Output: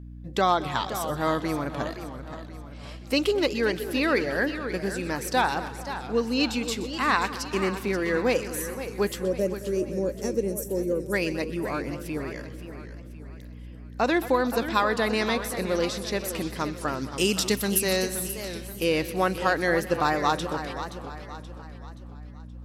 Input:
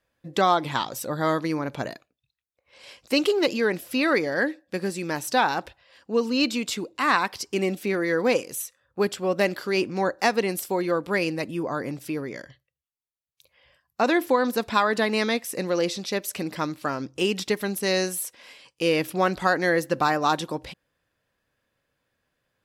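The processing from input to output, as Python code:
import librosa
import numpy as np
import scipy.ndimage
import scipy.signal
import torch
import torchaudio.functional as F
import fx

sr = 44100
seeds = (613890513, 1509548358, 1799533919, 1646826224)

p1 = fx.spec_box(x, sr, start_s=9.22, length_s=1.91, low_hz=610.0, high_hz=5400.0, gain_db=-19)
p2 = fx.bass_treble(p1, sr, bass_db=5, treble_db=12, at=(17.01, 17.83))
p3 = fx.add_hum(p2, sr, base_hz=60, snr_db=13)
p4 = p3 + fx.echo_split(p3, sr, split_hz=1600.0, low_ms=221, high_ms=125, feedback_pct=52, wet_db=-15.0, dry=0)
p5 = fx.echo_warbled(p4, sr, ms=526, feedback_pct=44, rate_hz=2.8, cents=168, wet_db=-11)
y = F.gain(torch.from_numpy(p5), -2.0).numpy()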